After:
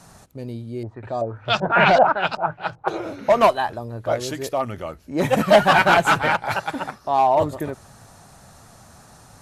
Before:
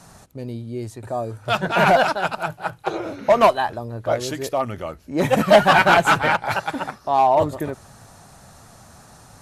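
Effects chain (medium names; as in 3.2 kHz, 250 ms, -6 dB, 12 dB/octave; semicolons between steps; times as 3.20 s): 0.83–2.88 s: LFO low-pass saw up 2.6 Hz 620–6600 Hz; trim -1 dB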